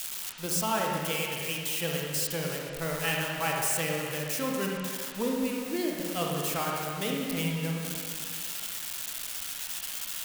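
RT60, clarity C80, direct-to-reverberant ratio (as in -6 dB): 2.2 s, 1.5 dB, -1.5 dB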